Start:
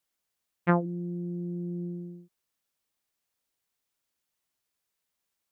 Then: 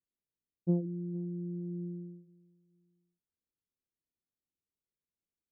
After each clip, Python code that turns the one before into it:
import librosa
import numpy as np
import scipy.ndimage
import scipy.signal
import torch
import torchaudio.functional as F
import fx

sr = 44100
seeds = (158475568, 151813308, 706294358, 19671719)

y = scipy.signal.sosfilt(scipy.signal.cheby2(4, 70, 1900.0, 'lowpass', fs=sr, output='sos'), x)
y = fx.echo_feedback(y, sr, ms=460, feedback_pct=30, wet_db=-22.0)
y = F.gain(torch.from_numpy(y), -3.5).numpy()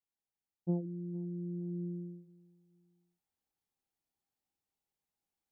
y = fx.rider(x, sr, range_db=10, speed_s=2.0)
y = fx.peak_eq(y, sr, hz=800.0, db=15.0, octaves=0.26)
y = F.gain(torch.from_numpy(y), -2.0).numpy()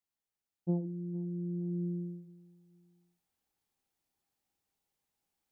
y = fx.rider(x, sr, range_db=10, speed_s=2.0)
y = fx.echo_feedback(y, sr, ms=70, feedback_pct=18, wet_db=-16.5)
y = F.gain(torch.from_numpy(y), 3.0).numpy()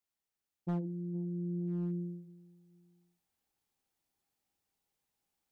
y = np.clip(10.0 ** (30.0 / 20.0) * x, -1.0, 1.0) / 10.0 ** (30.0 / 20.0)